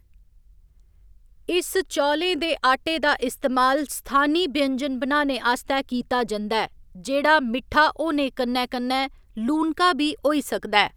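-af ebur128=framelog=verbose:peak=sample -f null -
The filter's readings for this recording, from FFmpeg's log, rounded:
Integrated loudness:
  I:         -22.6 LUFS
  Threshold: -33.2 LUFS
Loudness range:
  LRA:         1.8 LU
  Threshold: -42.8 LUFS
  LRA low:   -23.8 LUFS
  LRA high:  -21.9 LUFS
Sample peak:
  Peak:       -2.4 dBFS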